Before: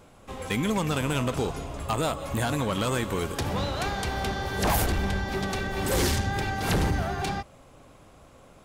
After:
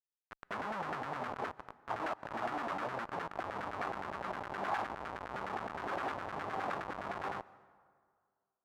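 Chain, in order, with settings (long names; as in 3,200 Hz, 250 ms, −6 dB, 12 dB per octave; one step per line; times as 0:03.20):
each half-wave held at its own peak
0:01.99–0:02.85: low shelf with overshoot 190 Hz −9 dB, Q 1.5
mains-hum notches 50/100/150 Hz
in parallel at +1 dB: downward compressor 8 to 1, threshold −36 dBFS, peak gain reduction 16.5 dB
on the sum: notch comb filter 510 Hz
chorus effect 0.36 Hz, delay 17 ms, depth 4.2 ms
comparator with hysteresis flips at −24.5 dBFS
auto-filter band-pass saw down 9.7 Hz 720–1,600 Hz
dense smooth reverb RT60 2 s, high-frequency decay 0.55×, pre-delay 110 ms, DRR 20 dB
level +1 dB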